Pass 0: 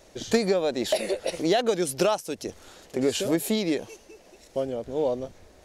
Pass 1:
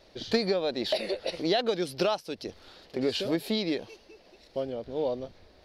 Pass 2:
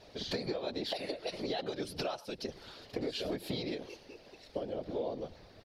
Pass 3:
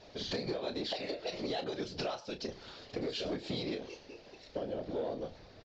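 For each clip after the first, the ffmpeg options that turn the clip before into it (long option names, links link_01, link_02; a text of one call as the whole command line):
ffmpeg -i in.wav -af "highshelf=frequency=5700:width_type=q:width=3:gain=-8,volume=-4dB" out.wav
ffmpeg -i in.wav -filter_complex "[0:a]asplit=2[link_01][link_02];[link_02]adelay=99.13,volume=-23dB,highshelf=frequency=4000:gain=-2.23[link_03];[link_01][link_03]amix=inputs=2:normalize=0,acompressor=threshold=-35dB:ratio=5,afftfilt=real='hypot(re,im)*cos(2*PI*random(0))':imag='hypot(re,im)*sin(2*PI*random(1))':win_size=512:overlap=0.75,volume=7dB" out.wav
ffmpeg -i in.wav -filter_complex "[0:a]asplit=2[link_01][link_02];[link_02]asoftclip=type=hard:threshold=-35dB,volume=-5dB[link_03];[link_01][link_03]amix=inputs=2:normalize=0,asplit=2[link_04][link_05];[link_05]adelay=32,volume=-9.5dB[link_06];[link_04][link_06]amix=inputs=2:normalize=0,aresample=16000,aresample=44100,volume=-3.5dB" out.wav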